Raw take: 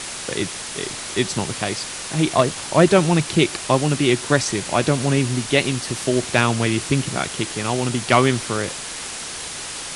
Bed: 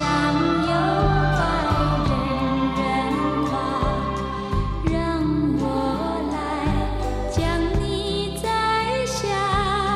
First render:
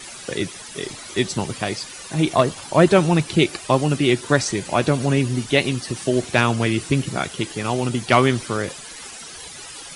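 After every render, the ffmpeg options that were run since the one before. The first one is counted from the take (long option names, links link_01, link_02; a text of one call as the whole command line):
ffmpeg -i in.wav -af "afftdn=noise_reduction=13:noise_floor=-32" out.wav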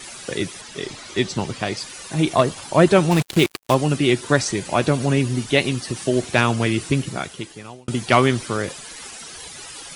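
ffmpeg -i in.wav -filter_complex "[0:a]asettb=1/sr,asplit=3[link_01][link_02][link_03];[link_01]atrim=end=0.614[link_04];[link_02]atrim=start=0.61:end=1.77,asetpts=PTS-STARTPTS,afade=type=in:duration=0.004:curve=qsin,afade=type=out:start_time=1.156:duration=0.004:curve=qsin,acrossover=split=7600[link_05][link_06];[link_06]acompressor=threshold=-54dB:ratio=4:attack=1:release=60[link_07];[link_05][link_07]amix=inputs=2:normalize=0[link_08];[link_03]atrim=start=1.766[link_09];[link_04][link_08]acrossfade=duration=0.004:curve1=hsin:curve2=qsin[link_10];[link_10][link_09]acrossfade=duration=0.004:curve1=qsin:curve2=hsin,asplit=3[link_11][link_12][link_13];[link_11]afade=type=out:start_time=3.1:duration=0.02[link_14];[link_12]acrusher=bits=3:mix=0:aa=0.5,afade=type=in:start_time=3.1:duration=0.02,afade=type=out:start_time=3.73:duration=0.02[link_15];[link_13]afade=type=in:start_time=3.73:duration=0.02[link_16];[link_14][link_15][link_16]amix=inputs=3:normalize=0,asplit=2[link_17][link_18];[link_17]atrim=end=7.88,asetpts=PTS-STARTPTS,afade=type=out:start_time=6.89:duration=0.99[link_19];[link_18]atrim=start=7.88,asetpts=PTS-STARTPTS,afade=type=in:duration=0.004:curve=hsin[link_20];[link_19][link_20]concat=n=2:v=0:a=1" out.wav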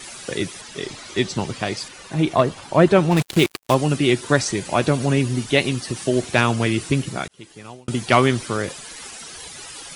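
ffmpeg -i in.wav -filter_complex "[0:a]asettb=1/sr,asplit=3[link_01][link_02][link_03];[link_01]atrim=end=1.884[link_04];[link_02]atrim=start=1.88:end=3.17,asetpts=PTS-STARTPTS,afade=type=in:duration=0.004:curve=qsin,afade=type=out:start_time=1.286:duration=0.004:curve=qsin,highshelf=frequency=5100:gain=-11[link_05];[link_03]atrim=start=3.166[link_06];[link_04][link_05]acrossfade=duration=0.004:curve1=hsin:curve2=qsin[link_07];[link_07][link_06]acrossfade=duration=0.004:curve1=qsin:curve2=hsin,asplit=2[link_08][link_09];[link_08]atrim=end=7.28,asetpts=PTS-STARTPTS,afade=type=out:start_time=7.276:duration=0.004:curve=hsin[link_10];[link_09]atrim=start=7.28,asetpts=PTS-STARTPTS,afade=type=in:duration=0.43[link_11];[link_10][link_11]concat=n=2:v=0:a=1" out.wav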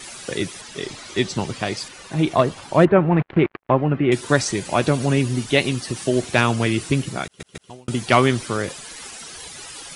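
ffmpeg -i in.wav -filter_complex "[0:a]asettb=1/sr,asplit=3[link_01][link_02][link_03];[link_01]atrim=end=2.854[link_04];[link_02]atrim=start=2.85:end=4.12,asetpts=PTS-STARTPTS,afade=type=in:duration=0.004:curve=qsin,afade=type=out:start_time=1.266:duration=0.004:curve=qsin,lowpass=frequency=2100:width=0.5412,lowpass=frequency=2100:width=1.3066[link_05];[link_03]atrim=start=4.116[link_06];[link_04][link_05]acrossfade=duration=0.004:curve1=hsin:curve2=qsin[link_07];[link_07][link_06]acrossfade=duration=0.004:curve1=qsin:curve2=hsin,asplit=4[link_08][link_09][link_10][link_11];[link_08]atrim=end=7.402[link_12];[link_09]atrim=start=7.248:end=7.402[link_13];[link_10]atrim=start=7.248:end=7.402[link_14];[link_11]atrim=start=7.698[link_15];[link_12][link_13]acrossfade=duration=0.004:curve1=hsin:curve2=hsin[link_16];[link_16][link_14]acrossfade=duration=0.004:curve1=hsin:curve2=hsin[link_17];[link_17][link_15]acrossfade=duration=0.004:curve1=hsin:curve2=hsin" out.wav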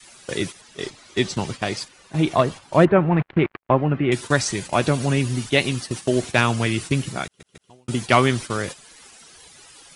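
ffmpeg -i in.wav -af "agate=range=-10dB:threshold=-29dB:ratio=16:detection=peak,adynamicequalizer=threshold=0.0316:dfrequency=380:dqfactor=0.75:tfrequency=380:tqfactor=0.75:attack=5:release=100:ratio=0.375:range=2.5:mode=cutabove:tftype=bell" out.wav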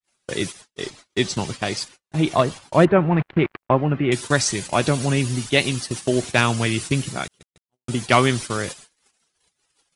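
ffmpeg -i in.wav -af "agate=range=-43dB:threshold=-43dB:ratio=16:detection=peak,adynamicequalizer=threshold=0.0251:dfrequency=3300:dqfactor=0.7:tfrequency=3300:tqfactor=0.7:attack=5:release=100:ratio=0.375:range=2:mode=boostabove:tftype=highshelf" out.wav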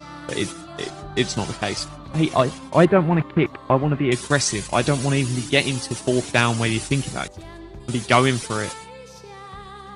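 ffmpeg -i in.wav -i bed.wav -filter_complex "[1:a]volume=-17.5dB[link_01];[0:a][link_01]amix=inputs=2:normalize=0" out.wav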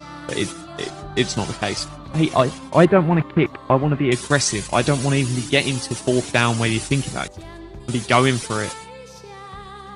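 ffmpeg -i in.wav -af "volume=1.5dB,alimiter=limit=-2dB:level=0:latency=1" out.wav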